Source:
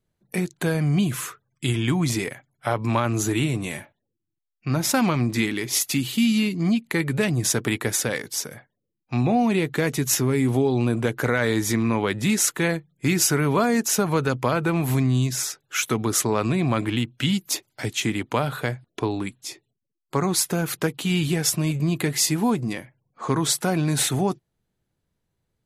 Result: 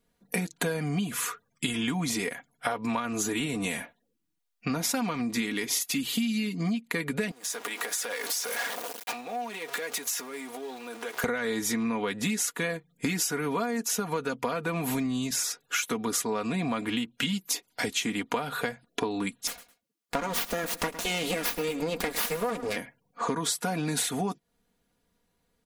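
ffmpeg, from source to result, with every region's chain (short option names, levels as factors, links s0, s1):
-filter_complex "[0:a]asettb=1/sr,asplit=3[s0][s1][s2];[s0]atrim=end=7.314[s3];[s1]atrim=start=7.31:end=11.24,asetpts=PTS-STARTPTS,afade=t=in:d=0.004:c=qsin,afade=t=out:st=3.926:d=0.004:c=qsin,aeval=exprs='val(0)+0.5*0.0355*sgn(val(0))':c=same,acompressor=threshold=0.0251:ratio=12:attack=3.2:release=140:knee=1:detection=peak,highpass=520[s4];[s2]atrim=start=11.236[s5];[s3][s4]acrossfade=d=0.004:c1=hsin:c2=qsin[s6];[s6][s5]acrossfade=d=0.004:c1=qsin:c2=hsin,asettb=1/sr,asplit=3[s7][s8][s9];[s7]atrim=end=19.474[s10];[s8]atrim=start=19.47:end=22.76,asetpts=PTS-STARTPTS,afade=t=in:d=0.004:c=qsin,afade=t=out:st=3.286:d=0.004:c=qsin,aeval=exprs='abs(val(0))':c=same,highpass=f=58:p=1,aecho=1:1:107|214:0.141|0.0339,atrim=end_sample=145089[s11];[s9]atrim=start=22.756[s12];[s10][s11]acrossfade=d=0.004:c1=hsin:c2=qsin[s13];[s13][s12]acrossfade=d=0.004:c1=qsin:c2=hsin,lowshelf=f=190:g=-7.5,aecho=1:1:4.2:0.69,acompressor=threshold=0.0251:ratio=8,volume=1.88"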